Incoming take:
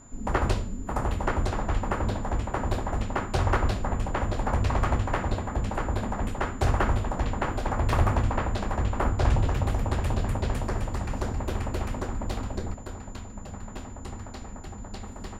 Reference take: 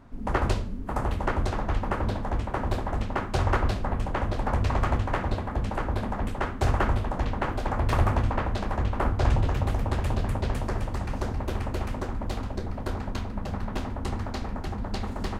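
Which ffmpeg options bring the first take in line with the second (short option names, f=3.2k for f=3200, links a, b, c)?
-af "bandreject=f=7.1k:w=30,asetnsamples=n=441:p=0,asendcmd='12.74 volume volume 7.5dB',volume=0dB"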